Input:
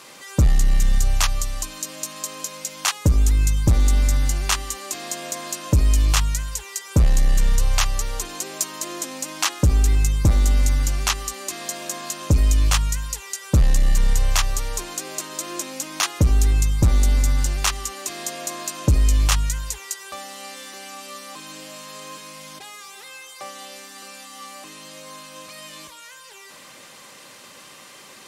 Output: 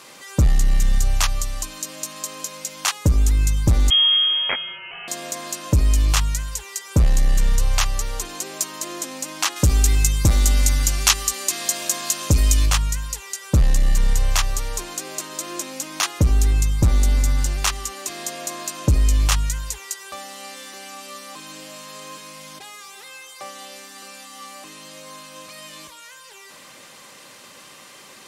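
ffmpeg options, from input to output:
-filter_complex "[0:a]asettb=1/sr,asplit=3[s0][s1][s2];[s0]atrim=end=3.904[s3];[s1]atrim=start=3.9:end=5.08,asetpts=PTS-STARTPTS,afade=t=in:d=0.004:c=qsin,afade=t=out:st=1.176:d=0.004:c=qsin,lowpass=f=2800:t=q:w=0.5098,lowpass=f=2800:t=q:w=0.6013,lowpass=f=2800:t=q:w=0.9,lowpass=f=2800:t=q:w=2.563,afreqshift=-3300[s4];[s2]atrim=start=5.076[s5];[s3][s4]acrossfade=d=0.004:c1=hsin:c2=qsin[s6];[s6][s5]acrossfade=d=0.004:c1=qsin:c2=hsin,asettb=1/sr,asplit=3[s7][s8][s9];[s7]atrim=end=9.564[s10];[s8]atrim=start=9.56:end=12.66,asetpts=PTS-STARTPTS,afade=t=in:d=0.004:c=qsin,afade=t=out:st=3.096:d=0.004:c=qsin,highshelf=f=2200:g=8.5[s11];[s9]atrim=start=12.656[s12];[s10][s11]acrossfade=d=0.004:c1=hsin:c2=qsin[s13];[s13][s12]acrossfade=d=0.004:c1=qsin:c2=hsin"

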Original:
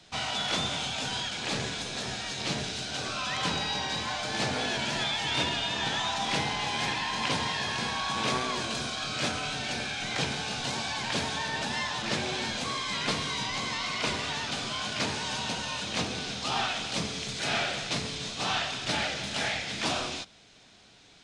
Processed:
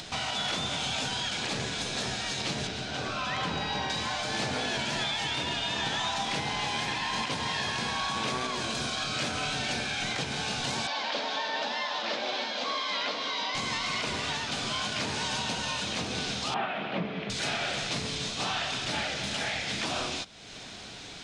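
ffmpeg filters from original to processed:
-filter_complex "[0:a]asettb=1/sr,asplit=3[s0][s1][s2];[s0]atrim=end=2.674[s3];[s1]atrim=start=2.67:end=3.9,asetpts=PTS-STARTPTS,afade=t=in:d=0.004:c=qsin,afade=t=out:st=1.226:d=0.004:c=qsin,lowpass=f=2500:p=1[s4];[s2]atrim=start=3.896[s5];[s3][s4]acrossfade=d=0.004:c1=hsin:c2=qsin[s6];[s6][s5]acrossfade=d=0.004:c1=qsin:c2=hsin,asettb=1/sr,asplit=3[s7][s8][s9];[s7]atrim=end=10.874[s10];[s8]atrim=start=10.87:end=13.55,asetpts=PTS-STARTPTS,afade=t=in:d=0.004:c=qsin,afade=t=out:st=2.676:d=0.004:c=qsin,highpass=f=280:w=0.5412,highpass=f=280:w=1.3066,equalizer=f=370:t=q:w=4:g=-9,equalizer=f=580:t=q:w=4:g=5,equalizer=f=1700:t=q:w=4:g=-3,equalizer=f=2500:t=q:w=4:g=-3,lowpass=f=5000:w=0.5412,lowpass=f=5000:w=1.3066[s11];[s9]atrim=start=13.546[s12];[s10][s11]acrossfade=d=0.004:c1=hsin:c2=qsin[s13];[s13][s12]acrossfade=d=0.004:c1=qsin:c2=hsin,asettb=1/sr,asplit=3[s14][s15][s16];[s14]atrim=end=16.544[s17];[s15]atrim=start=16.54:end=17.3,asetpts=PTS-STARTPTS,afade=t=in:d=0.004:c=qsin,afade=t=out:st=0.756:d=0.004:c=qsin,highpass=170,equalizer=f=180:t=q:w=4:g=9,equalizer=f=360:t=q:w=4:g=4,equalizer=f=620:t=q:w=4:g=6,lowpass=f=2600:w=0.5412,lowpass=f=2600:w=1.3066[s18];[s16]atrim=start=17.296[s19];[s17][s18]acrossfade=d=0.004:c1=hsin:c2=qsin[s20];[s20][s19]acrossfade=d=0.004:c1=qsin:c2=hsin,acompressor=mode=upward:threshold=0.0178:ratio=2.5,alimiter=limit=0.0668:level=0:latency=1:release=185,volume=1.33"

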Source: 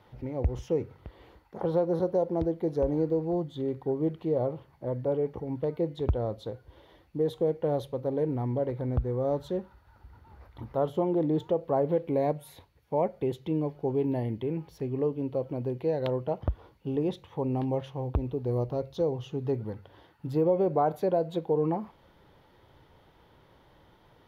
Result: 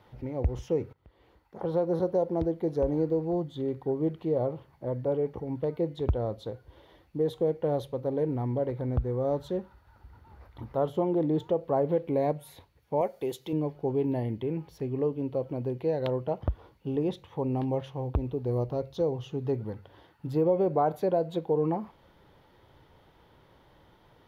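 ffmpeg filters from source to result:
-filter_complex "[0:a]asettb=1/sr,asplit=3[s0][s1][s2];[s0]atrim=end=13.014[s3];[s1]atrim=start=13.01:end=13.53,asetpts=PTS-STARTPTS,afade=t=in:d=0.004:c=qsin,afade=t=out:st=0.516:d=0.004:c=qsin,bass=f=250:g=-11,treble=f=4000:g=12[s4];[s2]atrim=start=13.526[s5];[s3][s4]acrossfade=d=0.004:c1=hsin:c2=qsin[s6];[s6][s5]acrossfade=d=0.004:c1=qsin:c2=hsin,asplit=2[s7][s8];[s7]atrim=end=0.93,asetpts=PTS-STARTPTS,afade=t=out:st=0.926:d=0.004:c=hsin:silence=0.11885[s9];[s8]atrim=start=0.93,asetpts=PTS-STARTPTS,afade=t=in:d=1:silence=0.11885[s10];[s9][s10]concat=n=2:v=0:a=1"

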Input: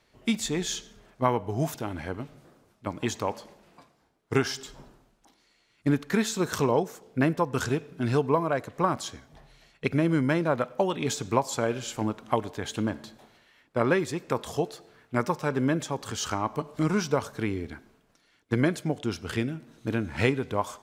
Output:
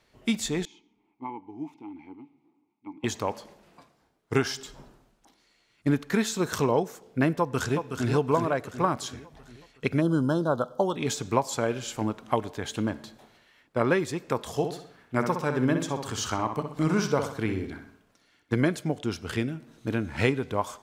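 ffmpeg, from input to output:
-filter_complex "[0:a]asettb=1/sr,asplit=3[s0][s1][s2];[s0]atrim=end=0.654[s3];[s1]atrim=start=0.65:end=3.04,asetpts=PTS-STARTPTS,afade=t=in:d=0.004:c=qsin,afade=t=out:st=2.386:d=0.004:c=qsin,asplit=3[s4][s5][s6];[s4]bandpass=f=300:t=q:w=8,volume=1[s7];[s5]bandpass=f=870:t=q:w=8,volume=0.501[s8];[s6]bandpass=f=2240:t=q:w=8,volume=0.355[s9];[s7][s8][s9]amix=inputs=3:normalize=0[s10];[s2]atrim=start=3.036[s11];[s3][s10]acrossfade=d=0.004:c1=hsin:c2=qsin[s12];[s12][s11]acrossfade=d=0.004:c1=qsin:c2=hsin,asplit=2[s13][s14];[s14]afade=t=in:st=7.38:d=0.01,afade=t=out:st=8.08:d=0.01,aecho=0:1:370|740|1110|1480|1850|2220|2590:0.473151|0.260233|0.143128|0.0787205|0.0432963|0.023813|0.0130971[s15];[s13][s15]amix=inputs=2:normalize=0,asplit=3[s16][s17][s18];[s16]afade=t=out:st=10:d=0.02[s19];[s17]asuperstop=centerf=2200:order=8:qfactor=1.3,afade=t=in:st=10:d=0.02,afade=t=out:st=10.95:d=0.02[s20];[s18]afade=t=in:st=10.95:d=0.02[s21];[s19][s20][s21]amix=inputs=3:normalize=0,asettb=1/sr,asplit=3[s22][s23][s24];[s22]atrim=end=14.504[s25];[s23]atrim=start=14.5:end=18.54,asetpts=PTS-STARTPTS,afade=t=in:d=0.004:c=qsin,afade=t=out:st=4.036:d=0.004:c=qsin,asplit=2[s26][s27];[s27]adelay=63,lowpass=f=4600:p=1,volume=0.447,asplit=2[s28][s29];[s29]adelay=63,lowpass=f=4600:p=1,volume=0.47,asplit=2[s30][s31];[s31]adelay=63,lowpass=f=4600:p=1,volume=0.47,asplit=2[s32][s33];[s33]adelay=63,lowpass=f=4600:p=1,volume=0.47,asplit=2[s34][s35];[s35]adelay=63,lowpass=f=4600:p=1,volume=0.47,asplit=2[s36][s37];[s37]adelay=63,lowpass=f=4600:p=1,volume=0.47[s38];[s26][s28][s30][s32][s34][s36][s38]amix=inputs=7:normalize=0,atrim=end_sample=178164[s39];[s24]atrim=start=18.536[s40];[s25][s39]acrossfade=d=0.004:c1=hsin:c2=qsin[s41];[s41][s40]acrossfade=d=0.004:c1=qsin:c2=hsin"

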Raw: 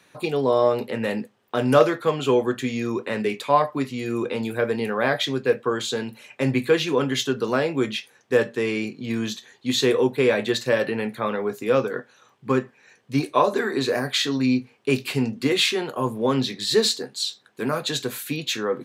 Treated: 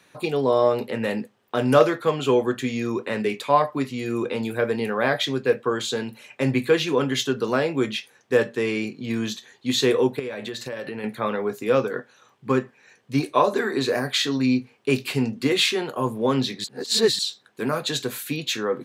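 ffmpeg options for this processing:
-filter_complex "[0:a]asettb=1/sr,asplit=3[s0][s1][s2];[s0]atrim=end=10.194[s3];[s1]atrim=start=10.19:end=11.04,asetpts=PTS-STARTPTS,afade=t=in:d=0.004:c=qsin,afade=t=out:st=0.846:d=0.004:c=qsin,acompressor=threshold=0.0398:ratio=8:attack=3.2:release=140:knee=1:detection=peak[s4];[s2]atrim=start=11.036[s5];[s3][s4]acrossfade=d=0.004:c1=hsin:c2=qsin[s6];[s6][s5]acrossfade=d=0.004:c1=qsin:c2=hsin,asplit=3[s7][s8][s9];[s7]atrim=end=16.642[s10];[s8]atrim=start=16.638:end=17.192,asetpts=PTS-STARTPTS,areverse[s11];[s9]atrim=start=17.188[s12];[s10][s11]acrossfade=d=0.004:c1=hsin:c2=hsin[s13];[s13][s12]acrossfade=d=0.004:c1=hsin:c2=hsin"

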